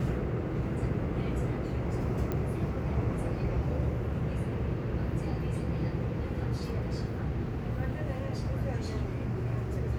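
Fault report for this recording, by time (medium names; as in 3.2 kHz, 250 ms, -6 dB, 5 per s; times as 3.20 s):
2.32 s: pop -20 dBFS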